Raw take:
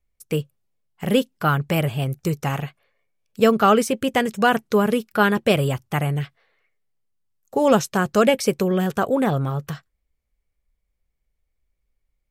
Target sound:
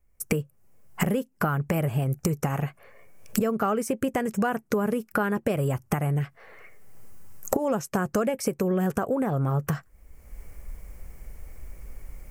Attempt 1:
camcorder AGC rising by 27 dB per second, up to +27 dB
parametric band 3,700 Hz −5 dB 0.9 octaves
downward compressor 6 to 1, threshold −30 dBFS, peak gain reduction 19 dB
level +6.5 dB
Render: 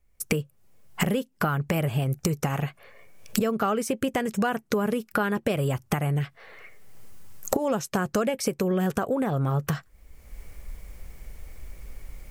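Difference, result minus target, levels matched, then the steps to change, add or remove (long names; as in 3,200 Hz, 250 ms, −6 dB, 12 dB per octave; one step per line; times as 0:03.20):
4,000 Hz band +6.0 dB
change: parametric band 3,700 Hz −15.5 dB 0.9 octaves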